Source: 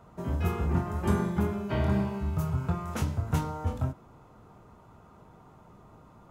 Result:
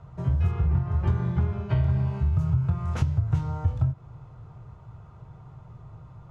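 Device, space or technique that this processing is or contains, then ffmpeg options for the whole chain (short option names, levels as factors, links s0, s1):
jukebox: -filter_complex "[0:a]asettb=1/sr,asplit=3[s0][s1][s2];[s0]atrim=end=0.514[s3];[s1]atrim=start=0.51:end=1.7,asetpts=PTS-STARTPTS,afade=t=in:d=0.004:c=qsin,afade=t=out:st=1.186:d=0.004:c=qsin,lowpass=5200[s4];[s2]atrim=start=1.696[s5];[s3][s4]acrossfade=d=0.004:c1=hsin:c2=qsin[s6];[s6][s5]acrossfade=d=0.004:c1=qsin:c2=hsin,lowpass=5800,lowshelf=f=170:t=q:w=3:g=9,acompressor=threshold=0.1:ratio=5"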